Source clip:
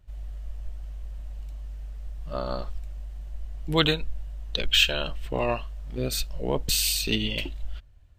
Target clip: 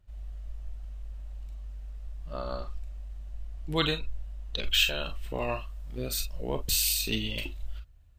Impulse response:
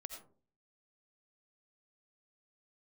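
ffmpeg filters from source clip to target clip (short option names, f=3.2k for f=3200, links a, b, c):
-filter_complex "[0:a]asetnsamples=n=441:p=0,asendcmd='4.64 highshelf g 9',highshelf=f=9.7k:g=-2[a];[1:a]atrim=start_sample=2205,afade=t=out:st=0.14:d=0.01,atrim=end_sample=6615,asetrate=88200,aresample=44100[b];[a][b]afir=irnorm=-1:irlink=0,volume=6dB"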